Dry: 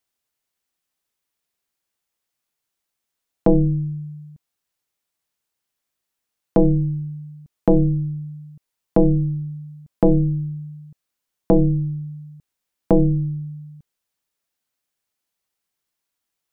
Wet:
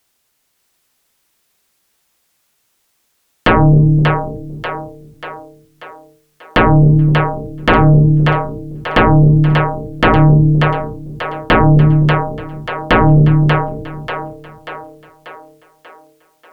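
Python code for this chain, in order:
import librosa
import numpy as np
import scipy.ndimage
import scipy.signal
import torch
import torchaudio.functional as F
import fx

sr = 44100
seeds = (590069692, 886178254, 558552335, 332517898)

y = fx.fold_sine(x, sr, drive_db=11, ceiling_db=-7.0)
y = fx.echo_split(y, sr, split_hz=400.0, low_ms=257, high_ms=588, feedback_pct=52, wet_db=-4.5)
y = F.gain(torch.from_numpy(y), 1.5).numpy()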